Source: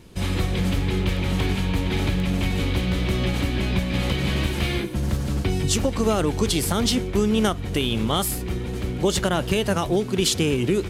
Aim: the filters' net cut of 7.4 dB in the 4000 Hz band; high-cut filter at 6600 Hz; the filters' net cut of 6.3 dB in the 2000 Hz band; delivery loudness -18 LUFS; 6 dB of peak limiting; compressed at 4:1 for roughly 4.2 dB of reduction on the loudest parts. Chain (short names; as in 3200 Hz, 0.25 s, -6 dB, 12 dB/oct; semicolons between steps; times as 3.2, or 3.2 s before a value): LPF 6600 Hz; bell 2000 Hz -6 dB; bell 4000 Hz -7 dB; compressor 4:1, threshold -22 dBFS; gain +11 dB; limiter -8.5 dBFS